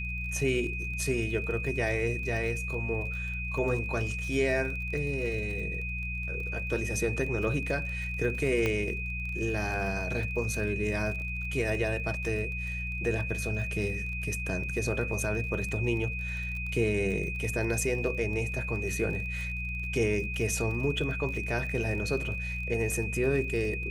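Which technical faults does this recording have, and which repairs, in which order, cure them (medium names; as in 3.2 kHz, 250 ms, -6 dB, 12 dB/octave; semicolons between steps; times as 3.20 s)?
crackle 36 per s -37 dBFS
hum 60 Hz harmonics 3 -36 dBFS
whine 2.5 kHz -35 dBFS
8.66 s: pop -15 dBFS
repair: de-click; de-hum 60 Hz, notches 3; band-stop 2.5 kHz, Q 30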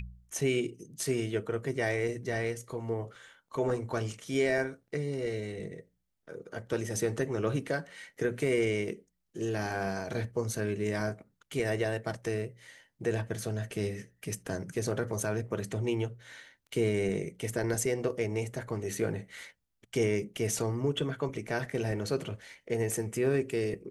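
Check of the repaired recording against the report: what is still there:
nothing left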